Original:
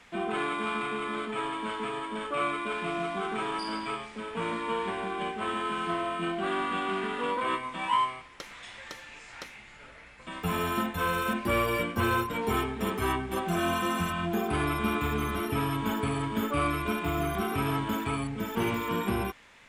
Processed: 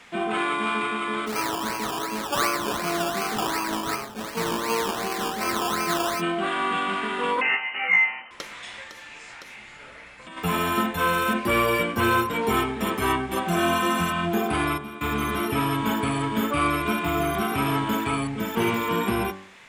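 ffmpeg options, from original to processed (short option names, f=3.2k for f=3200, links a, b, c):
-filter_complex "[0:a]asplit=3[a][b][c];[a]afade=t=out:st=1.26:d=0.02[d];[b]acrusher=samples=17:mix=1:aa=0.000001:lfo=1:lforange=10.2:lforate=2.7,afade=t=in:st=1.26:d=0.02,afade=t=out:st=6.2:d=0.02[e];[c]afade=t=in:st=6.2:d=0.02[f];[d][e][f]amix=inputs=3:normalize=0,asettb=1/sr,asplit=3[g][h][i];[g]atrim=end=7.414[j];[h]atrim=start=7.41:end=8.31,asetpts=PTS-STARTPTS,afade=t=in:d=0.004:c=qsin,afade=t=out:st=0.896:d=0.004:c=qsin,lowpass=f=2.6k:t=q:w=0.5098,lowpass=f=2.6k:t=q:w=0.6013,lowpass=f=2.6k:t=q:w=0.9,lowpass=f=2.6k:t=q:w=2.563,afreqshift=-3100[k];[i]atrim=start=8.306[l];[j][k]acrossfade=d=0.004:c1=hsin:c2=qsin[m];[m][l]acrossfade=d=0.004:c1=qsin:c2=hsin,asplit=3[n][o][p];[n]afade=t=out:st=8.83:d=0.02[q];[o]acompressor=threshold=-44dB:ratio=6:attack=3.2:release=140:knee=1:detection=peak,afade=t=in:st=8.83:d=0.02,afade=t=out:st=10.36:d=0.02[r];[p]afade=t=in:st=10.36:d=0.02[s];[q][r][s]amix=inputs=3:normalize=0,asplit=3[t][u][v];[t]atrim=end=14.78,asetpts=PTS-STARTPTS,afade=t=out:st=14.37:d=0.41:c=log:silence=0.177828[w];[u]atrim=start=14.78:end=15.01,asetpts=PTS-STARTPTS,volume=-15dB[x];[v]atrim=start=15.01,asetpts=PTS-STARTPTS,afade=t=in:d=0.41:c=log:silence=0.177828[y];[w][x][y]concat=n=3:v=0:a=1,lowshelf=f=82:g=-10.5,bandreject=f=47.9:t=h:w=4,bandreject=f=95.8:t=h:w=4,bandreject=f=143.7:t=h:w=4,bandreject=f=191.6:t=h:w=4,bandreject=f=239.5:t=h:w=4,bandreject=f=287.4:t=h:w=4,bandreject=f=335.3:t=h:w=4,bandreject=f=383.2:t=h:w=4,bandreject=f=431.1:t=h:w=4,bandreject=f=479:t=h:w=4,bandreject=f=526.9:t=h:w=4,bandreject=f=574.8:t=h:w=4,bandreject=f=622.7:t=h:w=4,bandreject=f=670.6:t=h:w=4,bandreject=f=718.5:t=h:w=4,bandreject=f=766.4:t=h:w=4,bandreject=f=814.3:t=h:w=4,bandreject=f=862.2:t=h:w=4,bandreject=f=910.1:t=h:w=4,bandreject=f=958:t=h:w=4,bandreject=f=1.0059k:t=h:w=4,bandreject=f=1.0538k:t=h:w=4,bandreject=f=1.1017k:t=h:w=4,bandreject=f=1.1496k:t=h:w=4,bandreject=f=1.1975k:t=h:w=4,bandreject=f=1.2454k:t=h:w=4,bandreject=f=1.2933k:t=h:w=4,bandreject=f=1.3412k:t=h:w=4,bandreject=f=1.3891k:t=h:w=4,bandreject=f=1.437k:t=h:w=4,bandreject=f=1.4849k:t=h:w=4,bandreject=f=1.5328k:t=h:w=4,bandreject=f=1.5807k:t=h:w=4,bandreject=f=1.6286k:t=h:w=4,bandreject=f=1.6765k:t=h:w=4,bandreject=f=1.7244k:t=h:w=4,bandreject=f=1.7723k:t=h:w=4,acontrast=68"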